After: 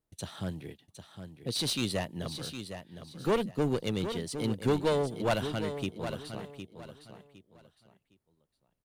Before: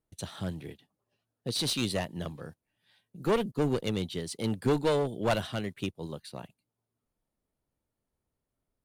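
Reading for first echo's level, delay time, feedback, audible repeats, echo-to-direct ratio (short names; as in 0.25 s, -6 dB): -9.5 dB, 0.76 s, 26%, 3, -9.0 dB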